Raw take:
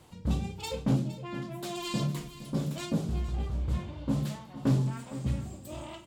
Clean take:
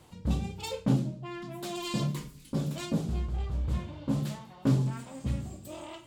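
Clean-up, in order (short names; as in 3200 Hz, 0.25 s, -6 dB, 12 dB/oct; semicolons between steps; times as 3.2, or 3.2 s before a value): clip repair -18.5 dBFS; inverse comb 0.463 s -14.5 dB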